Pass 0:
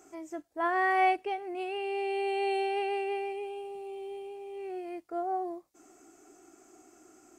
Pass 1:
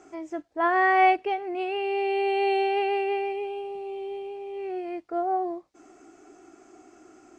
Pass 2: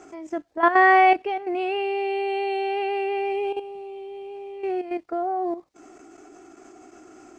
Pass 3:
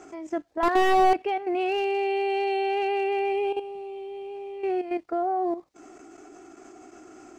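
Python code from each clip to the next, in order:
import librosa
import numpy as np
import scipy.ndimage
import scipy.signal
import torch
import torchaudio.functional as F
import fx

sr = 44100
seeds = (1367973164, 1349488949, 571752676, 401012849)

y1 = scipy.signal.sosfilt(scipy.signal.butter(2, 4600.0, 'lowpass', fs=sr, output='sos'), x)
y1 = y1 * librosa.db_to_amplitude(6.0)
y2 = fx.level_steps(y1, sr, step_db=11)
y2 = y2 * librosa.db_to_amplitude(7.5)
y3 = fx.slew_limit(y2, sr, full_power_hz=98.0)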